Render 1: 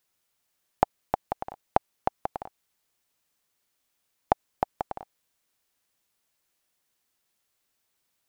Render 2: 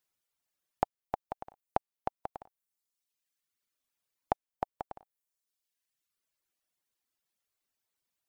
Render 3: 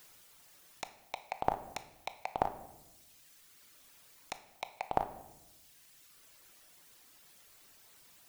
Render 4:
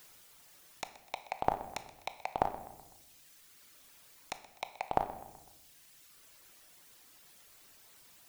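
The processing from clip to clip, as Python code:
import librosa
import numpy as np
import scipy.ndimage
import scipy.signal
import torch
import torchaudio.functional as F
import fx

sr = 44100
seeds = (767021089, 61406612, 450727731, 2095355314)

y1 = fx.dereverb_blind(x, sr, rt60_s=1.3)
y1 = F.gain(torch.from_numpy(y1), -7.0).numpy()
y2 = 10.0 ** (-27.0 / 20.0) * (np.abs((y1 / 10.0 ** (-27.0 / 20.0) + 3.0) % 4.0 - 2.0) - 1.0)
y2 = fx.over_compress(y2, sr, threshold_db=-51.0, ratio=-1.0)
y2 = fx.room_shoebox(y2, sr, seeds[0], volume_m3=390.0, walls='mixed', distance_m=0.4)
y2 = F.gain(torch.from_numpy(y2), 17.0).numpy()
y3 = fx.echo_feedback(y2, sr, ms=126, feedback_pct=49, wet_db=-18.5)
y3 = F.gain(torch.from_numpy(y3), 1.0).numpy()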